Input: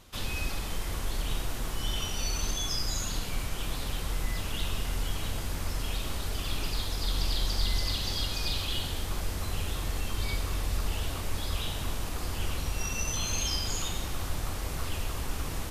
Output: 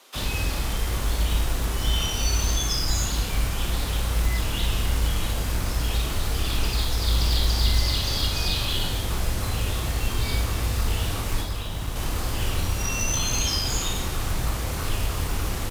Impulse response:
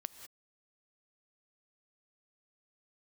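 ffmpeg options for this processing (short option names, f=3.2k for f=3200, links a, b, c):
-filter_complex "[0:a]asettb=1/sr,asplit=3[a][b][c];[a]atrim=end=11.414[d];[b]atrim=start=11.41:end=11.96,asetpts=PTS-STARTPTS,afade=t=in:d=0.004:c=qsin,afade=t=out:st=0.546:d=0.004:c=qsin,acrossover=split=160|1300[e][f][g];[e]acompressor=threshold=-31dB:ratio=4[h];[f]acompressor=threshold=-46dB:ratio=4[i];[g]acompressor=threshold=-45dB:ratio=4[j];[h][i][j]amix=inputs=3:normalize=0[k];[c]atrim=start=11.956[l];[d][k]acrossfade=d=0.004:c1=hsin:c2=qsin[m];[m][l]acrossfade=d=0.004:c1=qsin:c2=hsin,aecho=1:1:29|56:0.473|0.398,asplit=2[n][o];[o]acrusher=bits=3:mode=log:mix=0:aa=0.000001,volume=-5.5dB[p];[n][p]amix=inputs=2:normalize=0,afreqshift=17,acrossover=split=330|5000[q][r][s];[q]acrusher=bits=6:mix=0:aa=0.000001[t];[t][r][s]amix=inputs=3:normalize=0,volume=1dB"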